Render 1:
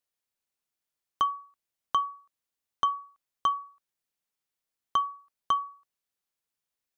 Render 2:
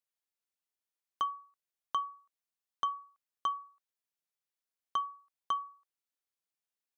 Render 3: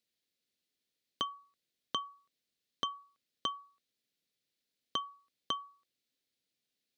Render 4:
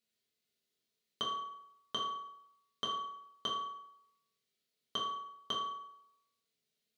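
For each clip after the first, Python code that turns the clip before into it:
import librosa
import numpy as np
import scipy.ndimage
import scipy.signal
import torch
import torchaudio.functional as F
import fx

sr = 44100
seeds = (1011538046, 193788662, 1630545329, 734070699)

y1 = fx.low_shelf(x, sr, hz=180.0, db=-9.0)
y1 = y1 * librosa.db_to_amplitude(-6.5)
y2 = fx.graphic_eq(y1, sr, hz=(125, 250, 500, 1000, 2000, 4000), db=(8, 11, 8, -12, 5, 11))
y2 = y2 * librosa.db_to_amplitude(1.0)
y3 = fx.rev_fdn(y2, sr, rt60_s=0.78, lf_ratio=0.85, hf_ratio=0.75, size_ms=14.0, drr_db=-4.5)
y3 = y3 * librosa.db_to_amplitude(-4.5)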